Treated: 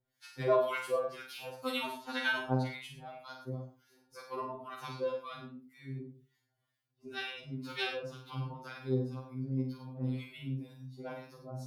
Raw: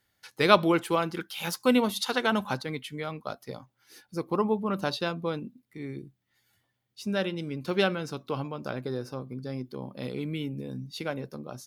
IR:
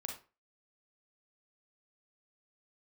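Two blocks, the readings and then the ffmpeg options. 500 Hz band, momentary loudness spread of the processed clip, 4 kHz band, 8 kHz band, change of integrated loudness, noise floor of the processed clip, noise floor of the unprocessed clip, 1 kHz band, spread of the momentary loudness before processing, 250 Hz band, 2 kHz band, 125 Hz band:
-7.0 dB, 15 LU, -8.5 dB, -13.0 dB, -7.5 dB, -82 dBFS, -77 dBFS, -9.0 dB, 15 LU, -10.5 dB, -5.5 dB, -2.5 dB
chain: -filter_complex "[0:a]acrossover=split=970[a][b];[a]aeval=exprs='val(0)*(1-1/2+1/2*cos(2*PI*2*n/s))':c=same[c];[b]aeval=exprs='val(0)*(1-1/2-1/2*cos(2*PI*2*n/s))':c=same[d];[c][d]amix=inputs=2:normalize=0,asplit=2[e][f];[1:a]atrim=start_sample=2205,adelay=46[g];[f][g]afir=irnorm=-1:irlink=0,volume=-1dB[h];[e][h]amix=inputs=2:normalize=0,afftfilt=real='re*2.45*eq(mod(b,6),0)':imag='im*2.45*eq(mod(b,6),0)':win_size=2048:overlap=0.75,volume=-2dB"

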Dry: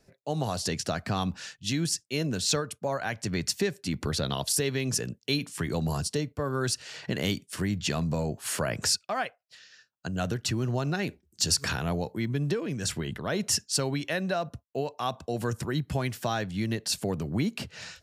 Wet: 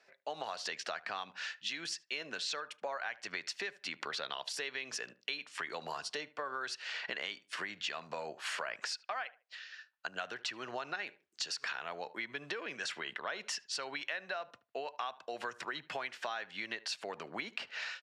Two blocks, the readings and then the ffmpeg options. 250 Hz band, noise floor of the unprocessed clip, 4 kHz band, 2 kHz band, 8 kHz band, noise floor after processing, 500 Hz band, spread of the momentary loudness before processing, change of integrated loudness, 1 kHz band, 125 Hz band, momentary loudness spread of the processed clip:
-22.0 dB, -72 dBFS, -7.5 dB, -2.0 dB, -15.0 dB, -73 dBFS, -12.0 dB, 6 LU, -10.0 dB, -6.0 dB, -32.0 dB, 4 LU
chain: -filter_complex "[0:a]highpass=560,lowpass=2.2k,tiltshelf=f=1.2k:g=-8.5,asplit=2[a][b];[b]adelay=75,lowpass=f=1.6k:p=1,volume=-20dB,asplit=2[c][d];[d]adelay=75,lowpass=f=1.6k:p=1,volume=0.2[e];[a][c][e]amix=inputs=3:normalize=0,acompressor=threshold=-41dB:ratio=6,volume=5dB"

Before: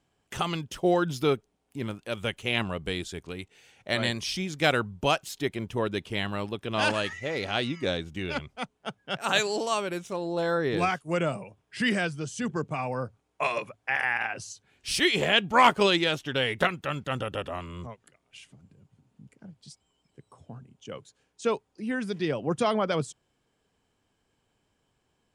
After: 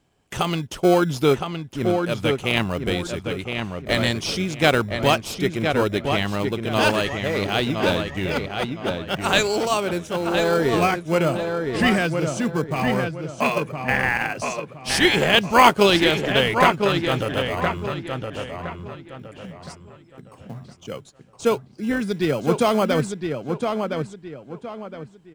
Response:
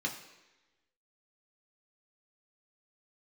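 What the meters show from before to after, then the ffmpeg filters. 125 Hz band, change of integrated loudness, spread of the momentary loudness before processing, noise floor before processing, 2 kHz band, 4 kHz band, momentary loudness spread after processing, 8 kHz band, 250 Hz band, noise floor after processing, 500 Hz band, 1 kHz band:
+8.5 dB, +6.5 dB, 16 LU, -75 dBFS, +6.0 dB, +6.0 dB, 18 LU, +6.5 dB, +8.5 dB, -48 dBFS, +8.0 dB, +7.0 dB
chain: -filter_complex "[0:a]asplit=2[a][b];[b]acrusher=samples=24:mix=1:aa=0.000001,volume=-10dB[c];[a][c]amix=inputs=2:normalize=0,asplit=2[d][e];[e]adelay=1015,lowpass=f=3.3k:p=1,volume=-5dB,asplit=2[f][g];[g]adelay=1015,lowpass=f=3.3k:p=1,volume=0.33,asplit=2[h][i];[i]adelay=1015,lowpass=f=3.3k:p=1,volume=0.33,asplit=2[j][k];[k]adelay=1015,lowpass=f=3.3k:p=1,volume=0.33[l];[d][f][h][j][l]amix=inputs=5:normalize=0,volume=5dB"

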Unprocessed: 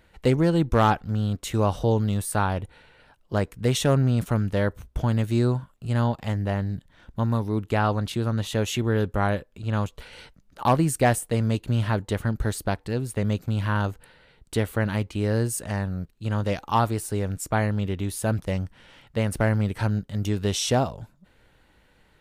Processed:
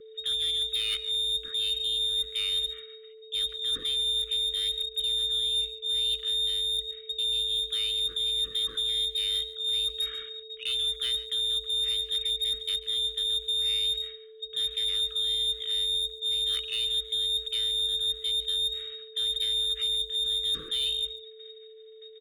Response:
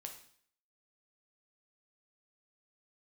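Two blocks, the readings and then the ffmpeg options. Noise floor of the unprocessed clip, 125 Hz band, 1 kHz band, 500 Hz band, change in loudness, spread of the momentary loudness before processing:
-61 dBFS, under -30 dB, under -30 dB, -16.5 dB, -1.0 dB, 9 LU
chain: -filter_complex "[0:a]aemphasis=mode=reproduction:type=riaa,agate=range=-33dB:threshold=-34dB:ratio=3:detection=peak,highshelf=f=2.2k:g=9.5,acrossover=split=860|920[a][b][c];[a]dynaudnorm=f=350:g=17:m=11.5dB[d];[d][b][c]amix=inputs=3:normalize=0,alimiter=limit=-8.5dB:level=0:latency=1:release=10,areverse,acompressor=threshold=-23dB:ratio=10,areverse,lowpass=f=3.2k:t=q:w=0.5098,lowpass=f=3.2k:t=q:w=0.6013,lowpass=f=3.2k:t=q:w=0.9,lowpass=f=3.2k:t=q:w=2.563,afreqshift=-3800,aeval=exprs='(tanh(15.8*val(0)+0.1)-tanh(0.1))/15.8':c=same,afreqshift=-56,aeval=exprs='val(0)+0.00562*sin(2*PI*440*n/s)':c=same,asuperstop=centerf=770:order=20:qfactor=1.2,asplit=2[e][f];[f]adelay=140,highpass=300,lowpass=3.4k,asoftclip=type=hard:threshold=-29dB,volume=-14dB[g];[e][g]amix=inputs=2:normalize=0"

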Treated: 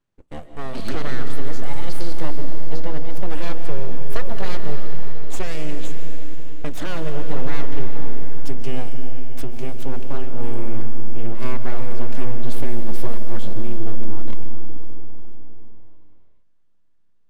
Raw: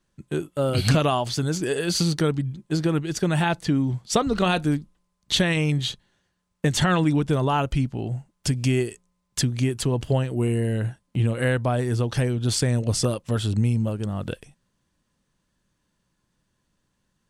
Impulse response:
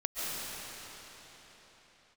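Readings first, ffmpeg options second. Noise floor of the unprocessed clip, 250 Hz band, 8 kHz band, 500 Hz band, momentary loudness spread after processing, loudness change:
-74 dBFS, -8.0 dB, -13.5 dB, -6.0 dB, 9 LU, -9.0 dB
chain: -filter_complex "[0:a]highshelf=f=4.8k:g=-10.5,aeval=exprs='abs(val(0))':c=same,asplit=2[a][b];[1:a]atrim=start_sample=2205,lowshelf=f=340:g=8[c];[b][c]afir=irnorm=-1:irlink=0,volume=-10.5dB[d];[a][d]amix=inputs=2:normalize=0,volume=-8dB"

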